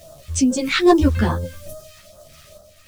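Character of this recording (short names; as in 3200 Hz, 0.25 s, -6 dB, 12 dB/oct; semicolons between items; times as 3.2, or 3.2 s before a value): a quantiser's noise floor 8-bit, dither none; phasing stages 2, 2.4 Hz, lowest notch 570–2200 Hz; random-step tremolo; a shimmering, thickened sound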